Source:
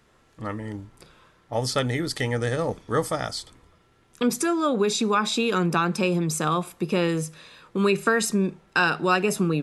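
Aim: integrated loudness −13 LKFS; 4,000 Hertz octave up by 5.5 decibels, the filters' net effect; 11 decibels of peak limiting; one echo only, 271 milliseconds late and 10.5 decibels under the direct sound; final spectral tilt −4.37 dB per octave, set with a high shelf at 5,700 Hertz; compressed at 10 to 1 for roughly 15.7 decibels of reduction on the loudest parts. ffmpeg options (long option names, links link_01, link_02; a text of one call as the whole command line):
ffmpeg -i in.wav -af "equalizer=frequency=4000:width_type=o:gain=8,highshelf=frequency=5700:gain=-4,acompressor=threshold=-32dB:ratio=10,alimiter=level_in=2.5dB:limit=-24dB:level=0:latency=1,volume=-2.5dB,aecho=1:1:271:0.299,volume=24dB" out.wav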